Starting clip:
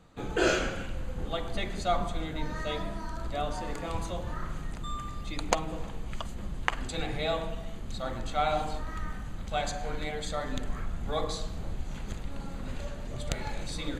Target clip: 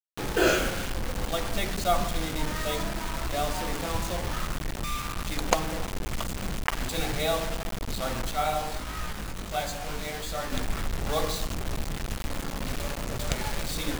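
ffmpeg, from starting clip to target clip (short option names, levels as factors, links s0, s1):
-filter_complex "[0:a]acrusher=bits=5:mix=0:aa=0.000001,asettb=1/sr,asplit=3[s0][s1][s2];[s0]atrim=end=8.314[s3];[s1]atrim=start=8.31:end=10.52,asetpts=PTS-STARTPTS,afade=t=in:d=0.004:c=qsin,afade=t=out:st=2.206:d=0.004:c=qsin,flanger=delay=17:depth=4.7:speed=1.4[s4];[s2]atrim=start=10.516[s5];[s3][s4]acrossfade=d=0.004:c1=hsin:c2=qsin[s6];[s6][s5]acrossfade=d=0.004:c1=qsin:c2=hsin,volume=1.41"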